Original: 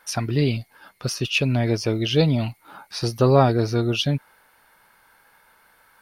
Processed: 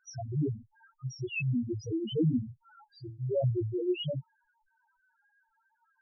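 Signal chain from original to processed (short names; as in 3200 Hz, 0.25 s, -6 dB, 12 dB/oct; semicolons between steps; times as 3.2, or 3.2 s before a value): chorus voices 6, 1 Hz, delay 22 ms, depth 3 ms; loudest bins only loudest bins 1; 2.84–3.44 resonator 110 Hz, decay 0.39 s, harmonics odd, mix 60%; gain +2 dB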